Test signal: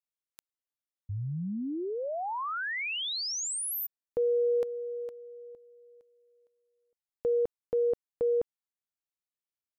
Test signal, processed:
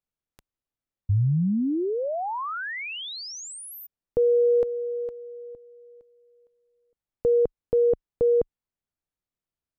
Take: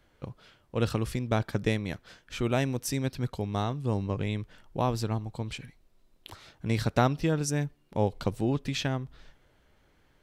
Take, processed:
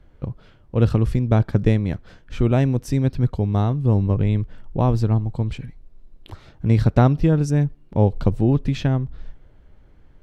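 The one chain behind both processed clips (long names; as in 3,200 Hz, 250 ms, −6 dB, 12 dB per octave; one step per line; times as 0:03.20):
spectral tilt −3 dB per octave
level +3.5 dB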